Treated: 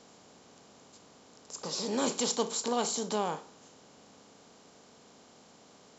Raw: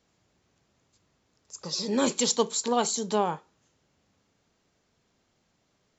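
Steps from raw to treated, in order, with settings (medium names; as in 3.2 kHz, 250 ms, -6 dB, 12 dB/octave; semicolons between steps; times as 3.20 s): spectral levelling over time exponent 0.6; trim -7.5 dB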